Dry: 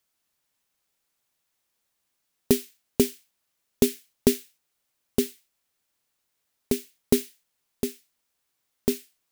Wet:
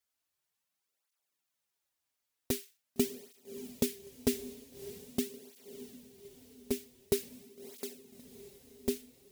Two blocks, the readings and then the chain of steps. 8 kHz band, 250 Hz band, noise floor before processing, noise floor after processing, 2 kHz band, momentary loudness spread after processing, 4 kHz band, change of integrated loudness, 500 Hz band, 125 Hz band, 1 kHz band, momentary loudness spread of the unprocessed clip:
-8.0 dB, -10.0 dB, -78 dBFS, under -85 dBFS, -7.5 dB, 19 LU, -7.5 dB, -10.0 dB, -9.5 dB, -10.0 dB, -8.0 dB, 9 LU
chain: peaking EQ 170 Hz -3.5 dB 2.4 oct; on a send: echo that smears into a reverb 616 ms, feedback 60%, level -13.5 dB; on the sum: cancelling through-zero flanger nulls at 0.45 Hz, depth 6.4 ms; trim -5 dB

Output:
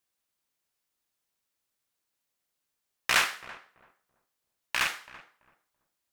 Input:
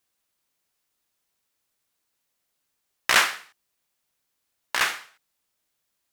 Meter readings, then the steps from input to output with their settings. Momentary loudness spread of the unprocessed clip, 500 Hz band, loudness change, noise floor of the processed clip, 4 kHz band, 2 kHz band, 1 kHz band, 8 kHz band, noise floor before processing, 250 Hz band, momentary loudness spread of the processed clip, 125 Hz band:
17 LU, -6.0 dB, -5.0 dB, -83 dBFS, -5.0 dB, -5.0 dB, -5.5 dB, -5.5 dB, -78 dBFS, -4.5 dB, 18 LU, -1.0 dB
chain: rattle on loud lows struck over -49 dBFS, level -10 dBFS; filtered feedback delay 333 ms, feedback 25%, low-pass 920 Hz, level -14 dB; trim -5.5 dB

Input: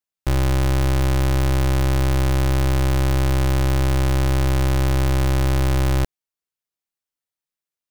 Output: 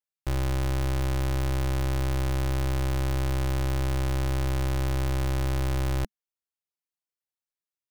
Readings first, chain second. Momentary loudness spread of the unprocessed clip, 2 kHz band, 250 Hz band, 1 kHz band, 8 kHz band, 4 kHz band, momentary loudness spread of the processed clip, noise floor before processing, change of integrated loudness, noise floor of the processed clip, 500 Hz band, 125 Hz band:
1 LU, -8.0 dB, -9.0 dB, -8.0 dB, -8.0 dB, -8.0 dB, 1 LU, under -85 dBFS, -8.0 dB, under -85 dBFS, -8.0 dB, -8.0 dB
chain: peaking EQ 210 Hz -9 dB 0.2 oct; trim -8 dB

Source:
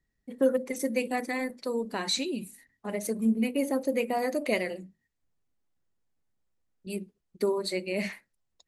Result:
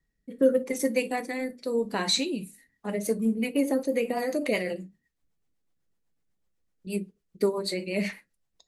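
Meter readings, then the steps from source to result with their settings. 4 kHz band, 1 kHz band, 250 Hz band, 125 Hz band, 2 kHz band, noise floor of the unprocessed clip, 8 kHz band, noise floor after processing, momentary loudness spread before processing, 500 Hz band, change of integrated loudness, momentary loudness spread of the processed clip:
+3.5 dB, -0.5 dB, +1.5 dB, no reading, +1.0 dB, -80 dBFS, +2.5 dB, -78 dBFS, 14 LU, +2.0 dB, +2.0 dB, 14 LU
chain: gated-style reverb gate 80 ms falling, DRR 10 dB; rotary cabinet horn 0.85 Hz, later 8 Hz, at 2.56 s; trim +3.5 dB

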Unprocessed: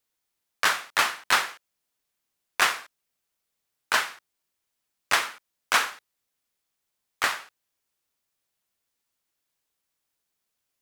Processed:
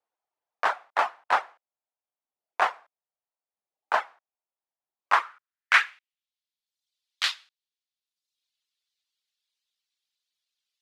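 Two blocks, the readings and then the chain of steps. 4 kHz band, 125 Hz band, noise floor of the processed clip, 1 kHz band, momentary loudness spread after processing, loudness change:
-5.0 dB, no reading, under -85 dBFS, +2.0 dB, 16 LU, -0.5 dB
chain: reverb removal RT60 0.97 s; band-pass sweep 750 Hz -> 3.8 kHz, 4.88–6.37 s; trim +8 dB

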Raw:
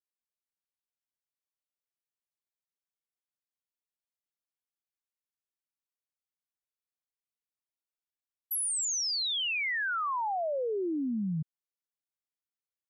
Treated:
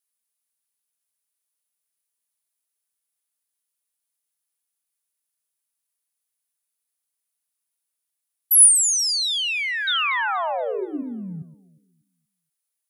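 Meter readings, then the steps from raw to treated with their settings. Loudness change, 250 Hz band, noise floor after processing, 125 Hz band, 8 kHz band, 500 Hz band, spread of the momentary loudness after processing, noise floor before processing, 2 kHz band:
+13.0 dB, +0.5 dB, -82 dBFS, no reading, +16.0 dB, +4.5 dB, 20 LU, under -85 dBFS, +8.0 dB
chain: peaking EQ 10 kHz +12 dB 0.37 oct; painted sound fall, 9.87–11.03 s, 240–3900 Hz -30 dBFS; tilt EQ +2 dB/octave; echo whose repeats swap between lows and highs 119 ms, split 1.7 kHz, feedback 56%, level -13 dB; trim +3.5 dB

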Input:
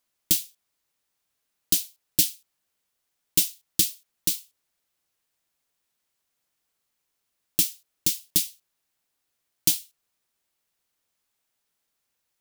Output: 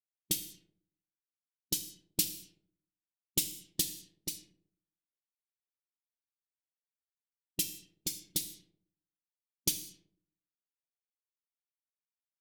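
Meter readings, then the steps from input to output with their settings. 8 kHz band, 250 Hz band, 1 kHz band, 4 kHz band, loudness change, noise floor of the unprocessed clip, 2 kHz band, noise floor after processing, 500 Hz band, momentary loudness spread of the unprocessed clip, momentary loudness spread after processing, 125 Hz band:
-9.0 dB, -7.0 dB, no reading, -8.5 dB, -10.5 dB, -79 dBFS, -8.5 dB, under -85 dBFS, -5.0 dB, 5 LU, 12 LU, -7.0 dB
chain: expander on every frequency bin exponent 2; Schroeder reverb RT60 0.78 s, combs from 26 ms, DRR 8.5 dB; level-controlled noise filter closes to 410 Hz, open at -28 dBFS; trim -4.5 dB

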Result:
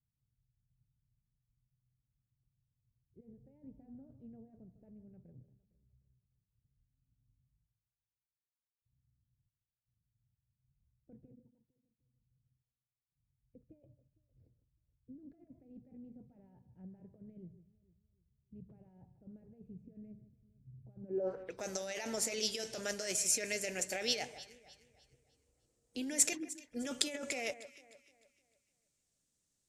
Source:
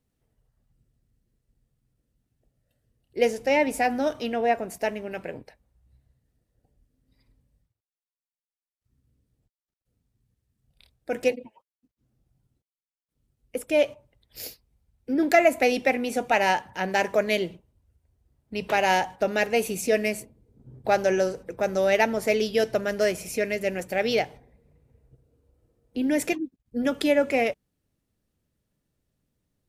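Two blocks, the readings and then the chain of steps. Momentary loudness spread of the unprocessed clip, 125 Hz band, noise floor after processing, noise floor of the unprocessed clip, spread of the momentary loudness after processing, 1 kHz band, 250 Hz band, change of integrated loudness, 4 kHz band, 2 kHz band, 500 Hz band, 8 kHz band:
14 LU, -14.0 dB, under -85 dBFS, under -85 dBFS, 24 LU, -26.5 dB, -18.0 dB, -11.0 dB, -7.0 dB, -18.5 dB, -20.5 dB, +1.5 dB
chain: bass shelf 210 Hz -5 dB; compressor with a negative ratio -27 dBFS, ratio -1; low-pass sweep 130 Hz -> 7.3 kHz, 20.99–21.62 s; pre-emphasis filter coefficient 0.8; on a send: echo whose repeats swap between lows and highs 152 ms, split 2.1 kHz, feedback 59%, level -13 dB

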